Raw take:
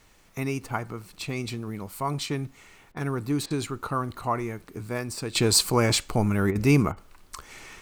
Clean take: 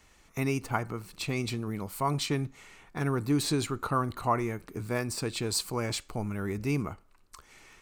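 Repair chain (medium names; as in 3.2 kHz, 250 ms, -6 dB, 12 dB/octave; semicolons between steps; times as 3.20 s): interpolate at 2.92/3.46/6.51/6.92 s, 44 ms; expander -46 dBFS, range -21 dB; trim 0 dB, from 5.35 s -10 dB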